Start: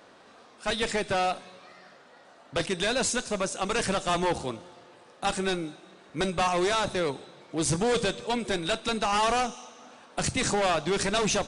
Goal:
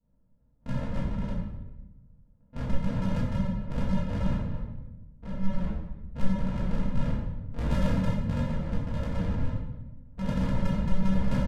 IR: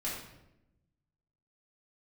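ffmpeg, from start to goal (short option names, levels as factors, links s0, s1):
-filter_complex "[0:a]afwtdn=0.0126,acrossover=split=350|3000[s0][s1][s2];[s1]acompressor=threshold=0.0178:ratio=6[s3];[s0][s3][s2]amix=inputs=3:normalize=0,aresample=16000,acrusher=samples=42:mix=1:aa=0.000001,aresample=44100,adynamicsmooth=sensitivity=3:basefreq=900[s4];[1:a]atrim=start_sample=2205,asetrate=34839,aresample=44100[s5];[s4][s5]afir=irnorm=-1:irlink=0,volume=0.668"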